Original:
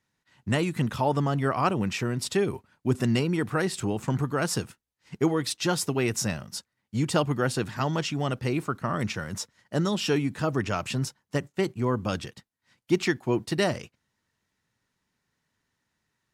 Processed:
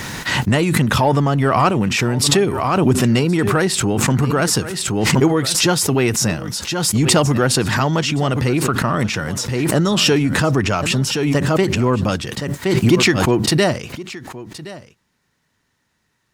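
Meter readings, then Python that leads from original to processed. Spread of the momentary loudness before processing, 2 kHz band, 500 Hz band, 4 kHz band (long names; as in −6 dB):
8 LU, +12.0 dB, +10.0 dB, +14.5 dB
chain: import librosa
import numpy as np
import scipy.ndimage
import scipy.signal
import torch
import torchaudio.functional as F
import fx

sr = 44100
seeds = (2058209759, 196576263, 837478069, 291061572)

p1 = 10.0 ** (-21.5 / 20.0) * np.tanh(x / 10.0 ** (-21.5 / 20.0))
p2 = x + (p1 * 10.0 ** (-5.5 / 20.0))
p3 = p2 + 10.0 ** (-17.5 / 20.0) * np.pad(p2, (int(1070 * sr / 1000.0), 0))[:len(p2)]
p4 = fx.pre_swell(p3, sr, db_per_s=27.0)
y = p4 * 10.0 ** (6.0 / 20.0)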